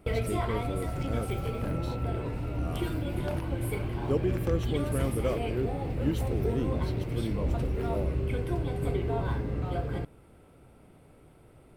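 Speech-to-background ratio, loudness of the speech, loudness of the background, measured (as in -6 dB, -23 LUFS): -4.0 dB, -36.0 LUFS, -32.0 LUFS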